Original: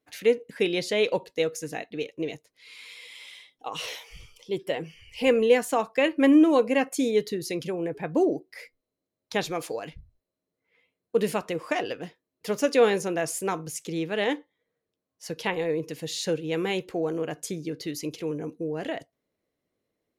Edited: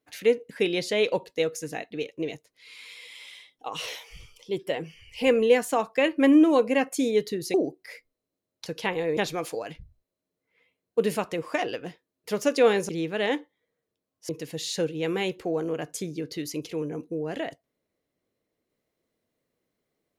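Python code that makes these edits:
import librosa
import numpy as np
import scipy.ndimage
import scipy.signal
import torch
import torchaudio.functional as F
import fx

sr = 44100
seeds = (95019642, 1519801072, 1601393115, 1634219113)

y = fx.edit(x, sr, fx.cut(start_s=7.54, length_s=0.68),
    fx.cut(start_s=13.06, length_s=0.81),
    fx.move(start_s=15.27, length_s=0.51, to_s=9.34), tone=tone)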